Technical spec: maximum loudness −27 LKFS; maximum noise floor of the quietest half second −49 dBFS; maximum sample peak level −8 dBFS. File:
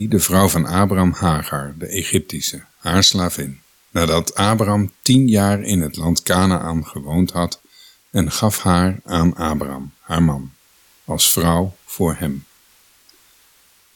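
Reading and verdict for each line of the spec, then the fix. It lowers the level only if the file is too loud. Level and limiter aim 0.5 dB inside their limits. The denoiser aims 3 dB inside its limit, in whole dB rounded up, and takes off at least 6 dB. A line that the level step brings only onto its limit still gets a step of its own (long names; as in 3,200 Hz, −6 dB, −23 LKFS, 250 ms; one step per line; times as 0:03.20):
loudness −18.0 LKFS: out of spec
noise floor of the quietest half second −54 dBFS: in spec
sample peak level −2.5 dBFS: out of spec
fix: level −9.5 dB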